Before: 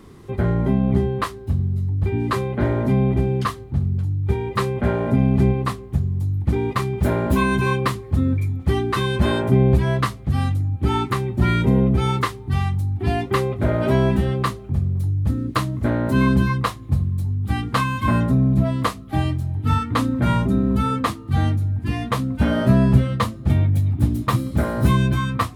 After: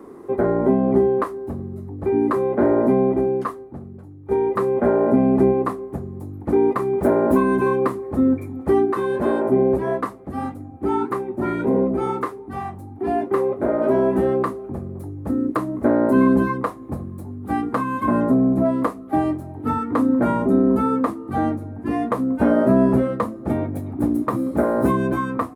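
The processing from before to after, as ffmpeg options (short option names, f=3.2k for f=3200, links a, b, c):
-filter_complex "[0:a]asplit=3[a][b][c];[a]afade=t=out:st=8.84:d=0.02[d];[b]flanger=delay=3.8:depth=7.3:regen=-66:speed=1.6:shape=sinusoidal,afade=t=in:st=8.84:d=0.02,afade=t=out:st=14.15:d=0.02[e];[c]afade=t=in:st=14.15:d=0.02[f];[d][e][f]amix=inputs=3:normalize=0,asettb=1/sr,asplit=3[g][h][i];[g]atrim=end=21.394[j];[h]atrim=start=21.39:end=21.91,asetpts=PTS-STARTPTS,afade=t=in:d=0.004:c=qsin,afade=t=out:st=0.516:d=0.004:c=qsin,highshelf=f=8.4k:g=-5.5[k];[i]atrim=start=21.906[l];[j][k]acrossfade=d=0.004:c1=hsin:c2=qsin[m];[m][l]acrossfade=d=0.004:c1=qsin:c2=hsin,asplit=2[n][o];[n]atrim=end=4.31,asetpts=PTS-STARTPTS,afade=t=out:st=2.85:d=1.46:c=qua:silence=0.398107[p];[o]atrim=start=4.31,asetpts=PTS-STARTPTS,afade=t=in:d=0.004:c=hsin:silence=0.398107[q];[p][q]concat=n=2:v=0:a=1,bass=f=250:g=-13,treble=f=4k:g=-2,acrossover=split=330[r][s];[s]acompressor=threshold=-25dB:ratio=10[t];[r][t]amix=inputs=2:normalize=0,firequalizer=gain_entry='entry(110,0);entry(260,13);entry(3100,-12);entry(9500,0)':delay=0.05:min_phase=1,volume=-1dB"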